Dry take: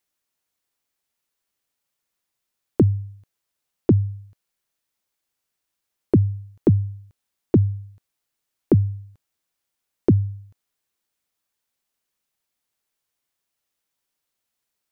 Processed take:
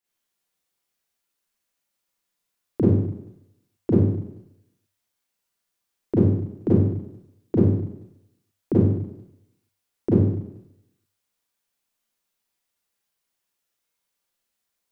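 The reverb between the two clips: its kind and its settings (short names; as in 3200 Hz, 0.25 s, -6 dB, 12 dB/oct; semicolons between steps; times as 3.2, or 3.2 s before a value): Schroeder reverb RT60 0.81 s, combs from 32 ms, DRR -9.5 dB; gain -9 dB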